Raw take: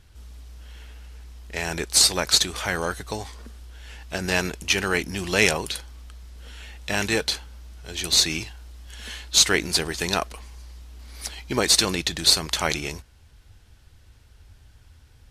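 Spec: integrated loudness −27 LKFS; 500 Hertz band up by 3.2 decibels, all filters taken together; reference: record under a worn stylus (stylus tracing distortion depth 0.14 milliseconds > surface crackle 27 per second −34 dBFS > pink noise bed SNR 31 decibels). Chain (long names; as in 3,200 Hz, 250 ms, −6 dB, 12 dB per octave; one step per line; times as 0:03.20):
parametric band 500 Hz +4 dB
stylus tracing distortion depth 0.14 ms
surface crackle 27 per second −34 dBFS
pink noise bed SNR 31 dB
level −5 dB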